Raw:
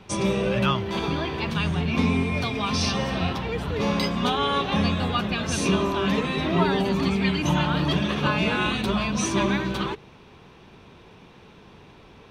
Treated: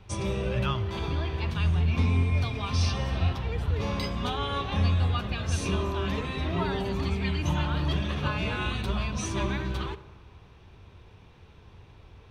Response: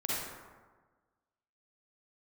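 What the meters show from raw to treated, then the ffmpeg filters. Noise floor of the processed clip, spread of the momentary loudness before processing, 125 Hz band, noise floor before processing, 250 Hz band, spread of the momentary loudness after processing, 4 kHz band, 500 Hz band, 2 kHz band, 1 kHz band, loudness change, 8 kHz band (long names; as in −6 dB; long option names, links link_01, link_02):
−53 dBFS, 4 LU, +0.5 dB, −50 dBFS, −8.5 dB, 5 LU, −7.0 dB, −7.5 dB, −7.0 dB, −7.5 dB, −4.5 dB, −7.5 dB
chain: -filter_complex "[0:a]lowshelf=frequency=130:width_type=q:width=1.5:gain=11,asplit=2[link_01][link_02];[1:a]atrim=start_sample=2205[link_03];[link_02][link_03]afir=irnorm=-1:irlink=0,volume=-19.5dB[link_04];[link_01][link_04]amix=inputs=2:normalize=0,volume=-8dB"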